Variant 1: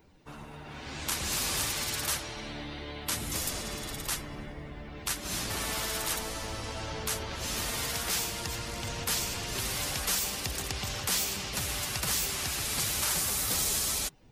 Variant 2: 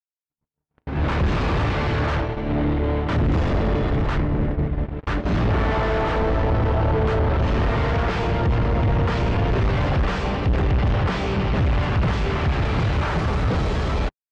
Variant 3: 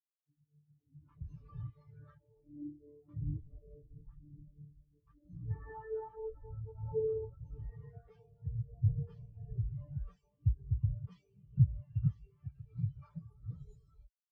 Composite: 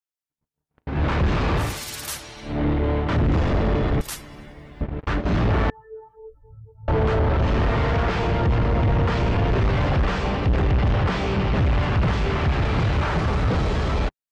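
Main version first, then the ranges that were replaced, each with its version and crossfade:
2
1.68–2.53 from 1, crossfade 0.24 s
4.01–4.81 from 1
5.7–6.88 from 3

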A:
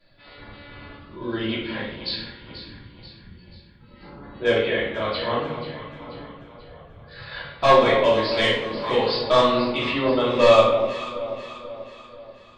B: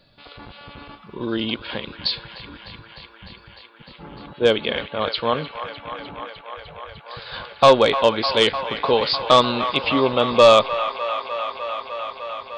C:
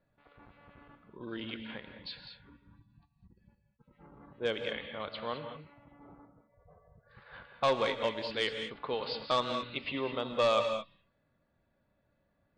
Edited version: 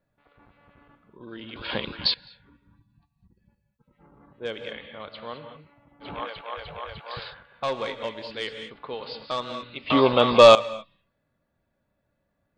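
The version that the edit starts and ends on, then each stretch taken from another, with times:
C
1.56–2.14 from B
6.05–7.3 from B, crossfade 0.10 s
9.9–10.55 from B
not used: A

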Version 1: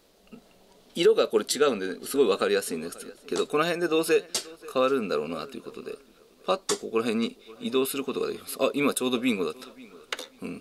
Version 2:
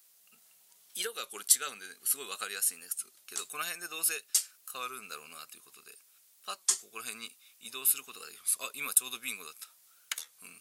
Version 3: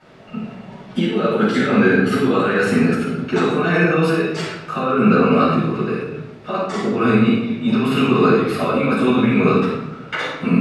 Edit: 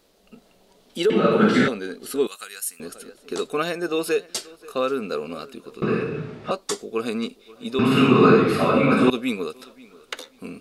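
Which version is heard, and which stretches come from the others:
1
1.1–1.68 from 3
2.27–2.8 from 2
5.82–6.51 from 3
7.79–9.1 from 3

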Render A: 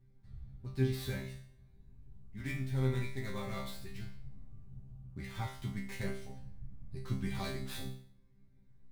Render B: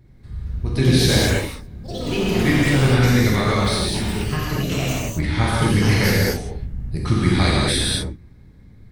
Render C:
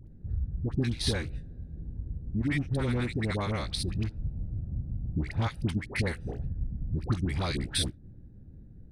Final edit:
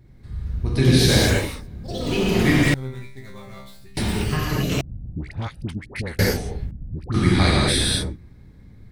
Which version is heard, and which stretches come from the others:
B
2.74–3.97 from A
4.81–6.19 from C
6.71–7.14 from C

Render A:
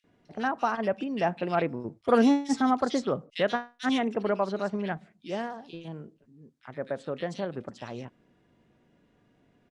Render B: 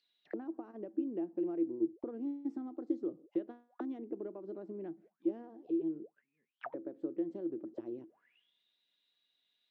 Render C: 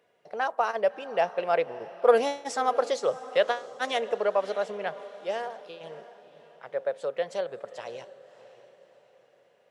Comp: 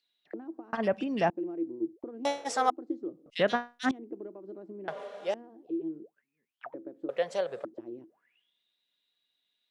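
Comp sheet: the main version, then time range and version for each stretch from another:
B
0.73–1.3 from A
2.25–2.7 from C
3.26–3.91 from A
4.88–5.34 from C
7.09–7.65 from C

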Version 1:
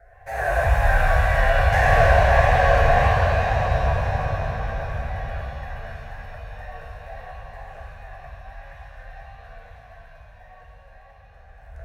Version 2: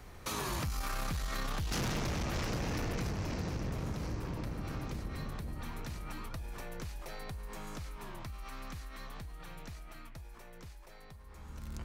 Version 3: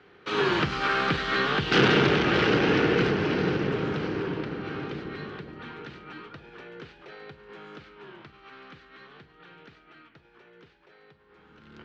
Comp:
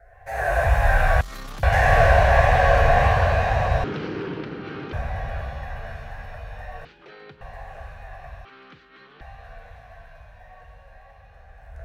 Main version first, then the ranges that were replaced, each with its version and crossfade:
1
1.21–1.63 from 2
3.84–4.93 from 3
6.85–7.41 from 3
8.45–9.21 from 3

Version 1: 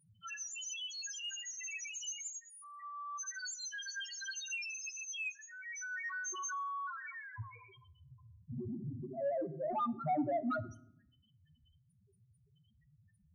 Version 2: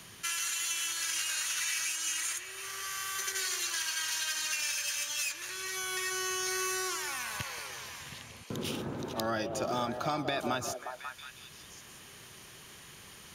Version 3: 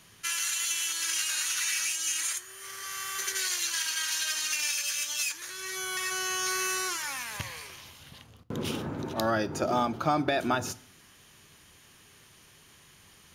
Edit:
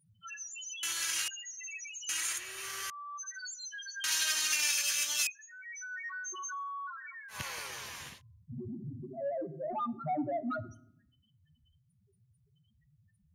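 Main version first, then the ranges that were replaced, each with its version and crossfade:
1
0.83–1.28 from 2
2.09–2.9 from 2
4.04–5.27 from 3
7.36–8.14 from 2, crossfade 0.16 s

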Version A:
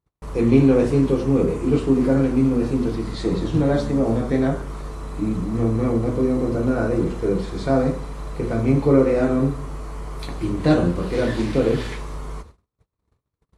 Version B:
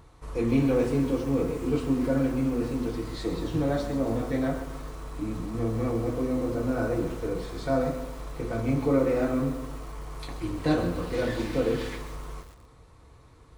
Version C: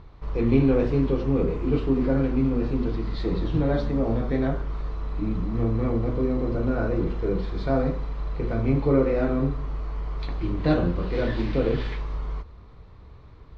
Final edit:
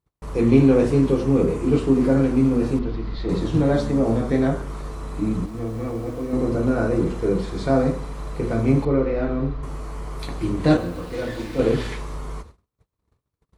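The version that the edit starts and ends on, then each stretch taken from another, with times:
A
2.79–3.29 from C
5.46–6.33 from B
8.85–9.63 from C
10.77–11.59 from B

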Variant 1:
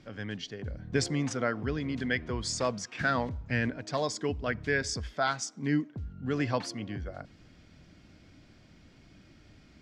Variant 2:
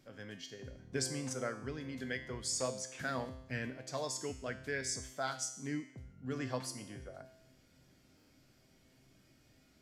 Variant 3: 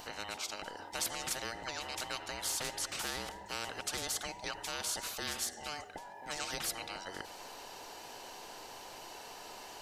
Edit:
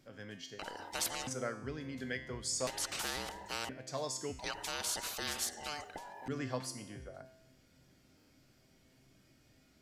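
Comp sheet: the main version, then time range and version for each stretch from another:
2
0.59–1.27 from 3
2.67–3.69 from 3
4.39–6.28 from 3
not used: 1

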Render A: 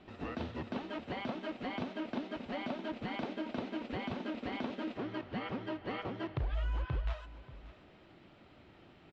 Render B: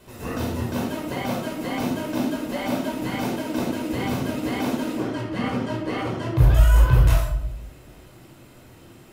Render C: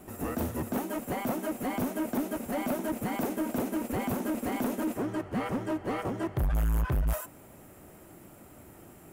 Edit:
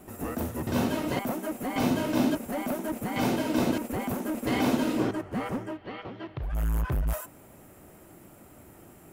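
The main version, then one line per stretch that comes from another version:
C
0.67–1.19 from B
1.76–2.35 from B
3.16–3.78 from B
4.47–5.11 from B
5.67–6.53 from A, crossfade 0.24 s

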